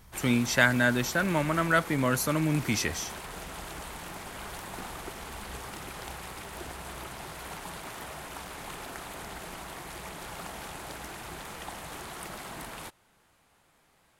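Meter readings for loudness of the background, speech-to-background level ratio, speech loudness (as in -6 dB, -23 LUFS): -40.5 LUFS, 14.0 dB, -26.5 LUFS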